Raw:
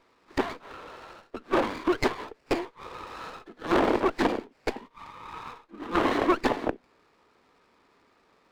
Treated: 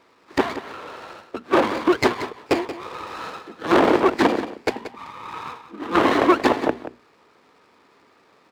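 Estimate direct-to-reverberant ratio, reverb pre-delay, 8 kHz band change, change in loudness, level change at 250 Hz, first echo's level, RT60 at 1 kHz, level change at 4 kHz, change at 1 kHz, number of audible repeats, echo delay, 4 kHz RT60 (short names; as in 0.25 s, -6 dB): none, none, +7.0 dB, +7.0 dB, +7.0 dB, -12.5 dB, none, +7.0 dB, +7.5 dB, 1, 0.18 s, none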